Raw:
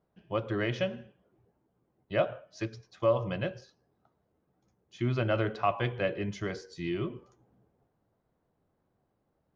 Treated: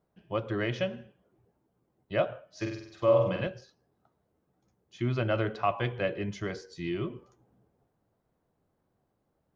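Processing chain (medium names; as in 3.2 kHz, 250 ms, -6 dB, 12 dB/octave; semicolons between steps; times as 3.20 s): 2.51–3.47 s: flutter echo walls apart 8.2 m, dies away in 0.69 s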